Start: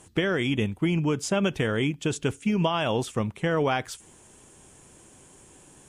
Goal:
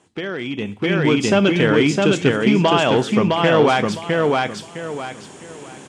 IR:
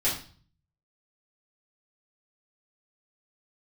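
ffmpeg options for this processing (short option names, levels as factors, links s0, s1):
-filter_complex "[0:a]asplit=2[s0][s1];[s1]aemphasis=mode=production:type=75fm[s2];[1:a]atrim=start_sample=2205[s3];[s2][s3]afir=irnorm=-1:irlink=0,volume=0.0562[s4];[s0][s4]amix=inputs=2:normalize=0,volume=7.94,asoftclip=hard,volume=0.126,lowpass=4900,aecho=1:1:659|1318|1977:0.708|0.163|0.0375,dynaudnorm=f=560:g=3:m=6.68,highpass=160,volume=0.75"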